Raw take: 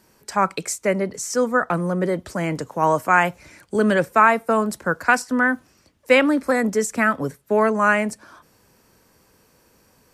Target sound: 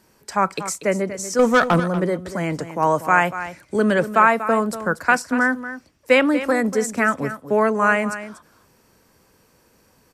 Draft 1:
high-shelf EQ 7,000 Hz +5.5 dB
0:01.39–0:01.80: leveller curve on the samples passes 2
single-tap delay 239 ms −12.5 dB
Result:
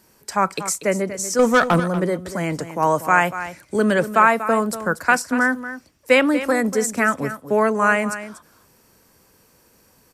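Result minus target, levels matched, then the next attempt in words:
8,000 Hz band +3.5 dB
high-shelf EQ 7,000 Hz −2 dB
0:01.39–0:01.80: leveller curve on the samples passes 2
single-tap delay 239 ms −12.5 dB

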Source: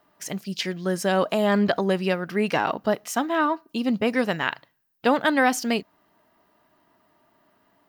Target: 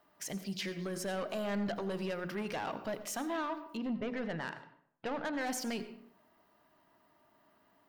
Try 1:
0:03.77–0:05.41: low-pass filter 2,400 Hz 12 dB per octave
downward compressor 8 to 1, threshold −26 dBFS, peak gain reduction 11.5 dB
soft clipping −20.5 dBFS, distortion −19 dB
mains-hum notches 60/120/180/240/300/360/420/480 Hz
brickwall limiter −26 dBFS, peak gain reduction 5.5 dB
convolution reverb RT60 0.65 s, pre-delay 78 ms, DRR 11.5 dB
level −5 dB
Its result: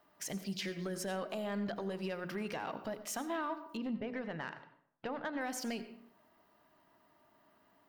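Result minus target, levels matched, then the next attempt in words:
downward compressor: peak gain reduction +11.5 dB
0:03.77–0:05.41: low-pass filter 2,400 Hz 12 dB per octave
soft clipping −20.5 dBFS, distortion −10 dB
mains-hum notches 60/120/180/240/300/360/420/480 Hz
brickwall limiter −26 dBFS, peak gain reduction 8.5 dB
convolution reverb RT60 0.65 s, pre-delay 78 ms, DRR 11.5 dB
level −5 dB

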